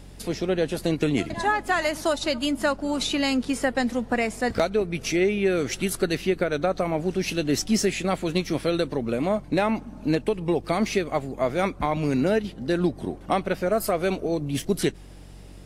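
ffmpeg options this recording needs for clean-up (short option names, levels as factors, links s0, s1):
-af "bandreject=f=46.6:t=h:w=4,bandreject=f=93.2:t=h:w=4,bandreject=f=139.8:t=h:w=4,bandreject=f=186.4:t=h:w=4"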